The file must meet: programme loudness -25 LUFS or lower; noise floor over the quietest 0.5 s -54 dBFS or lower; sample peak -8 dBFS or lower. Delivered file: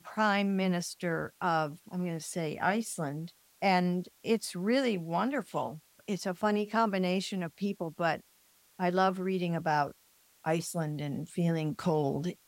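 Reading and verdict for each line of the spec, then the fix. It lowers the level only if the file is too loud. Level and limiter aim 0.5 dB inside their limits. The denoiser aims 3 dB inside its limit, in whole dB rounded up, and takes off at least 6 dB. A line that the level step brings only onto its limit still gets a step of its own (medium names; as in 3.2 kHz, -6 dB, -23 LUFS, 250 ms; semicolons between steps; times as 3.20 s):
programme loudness -32.0 LUFS: pass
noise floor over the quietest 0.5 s -65 dBFS: pass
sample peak -14.0 dBFS: pass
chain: none needed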